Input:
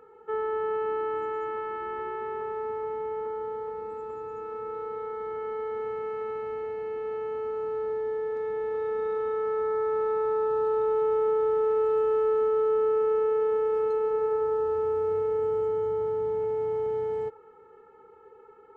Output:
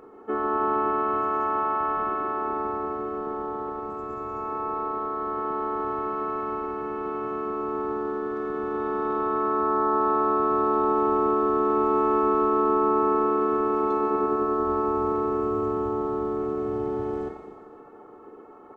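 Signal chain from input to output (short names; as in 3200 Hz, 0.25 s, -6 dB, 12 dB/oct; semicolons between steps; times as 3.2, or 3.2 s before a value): Schroeder reverb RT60 1.7 s, combs from 26 ms, DRR 3 dB; harmoniser -12 st -12 dB, -7 st -5 dB, -3 st -2 dB; gain +1 dB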